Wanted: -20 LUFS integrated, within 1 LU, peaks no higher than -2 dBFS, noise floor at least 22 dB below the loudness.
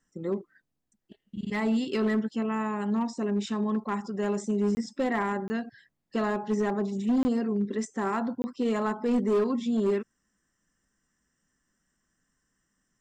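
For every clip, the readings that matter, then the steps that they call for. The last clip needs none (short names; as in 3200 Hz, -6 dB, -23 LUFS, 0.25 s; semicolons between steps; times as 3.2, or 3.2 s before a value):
clipped 1.3%; flat tops at -20.5 dBFS; dropouts 4; longest dropout 20 ms; loudness -29.0 LUFS; peak -20.5 dBFS; loudness target -20.0 LUFS
-> clip repair -20.5 dBFS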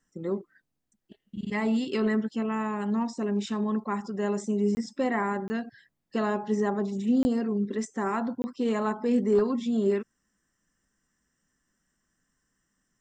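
clipped 0.0%; dropouts 4; longest dropout 20 ms
-> interpolate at 4.75/5.48/7.23/8.42, 20 ms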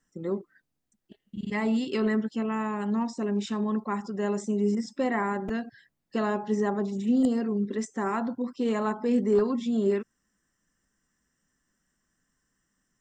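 dropouts 0; loudness -28.5 LUFS; peak -12.0 dBFS; loudness target -20.0 LUFS
-> gain +8.5 dB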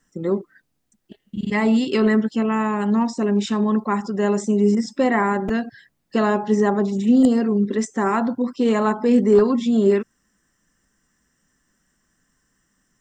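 loudness -20.0 LUFS; peak -3.5 dBFS; noise floor -72 dBFS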